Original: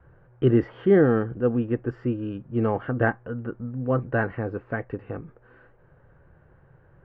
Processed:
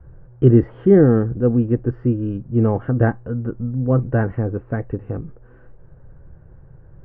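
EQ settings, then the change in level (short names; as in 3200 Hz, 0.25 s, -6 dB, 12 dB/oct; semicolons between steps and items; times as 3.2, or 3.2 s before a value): tilt -4 dB/oct; low shelf 170 Hz -3.5 dB; 0.0 dB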